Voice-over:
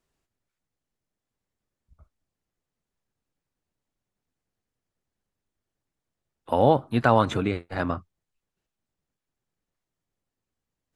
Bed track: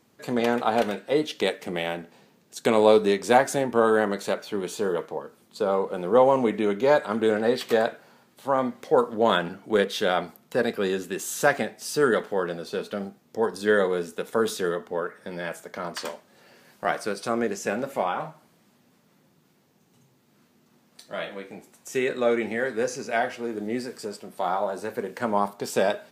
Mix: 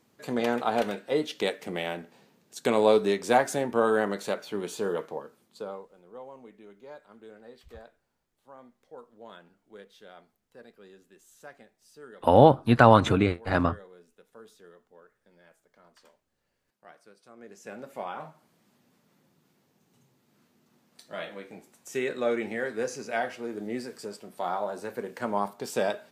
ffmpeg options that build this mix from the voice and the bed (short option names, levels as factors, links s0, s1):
-filter_complex "[0:a]adelay=5750,volume=1.41[s0];[1:a]volume=8.41,afade=t=out:st=5.14:d=0.74:silence=0.0707946,afade=t=in:st=17.36:d=1.38:silence=0.0794328[s1];[s0][s1]amix=inputs=2:normalize=0"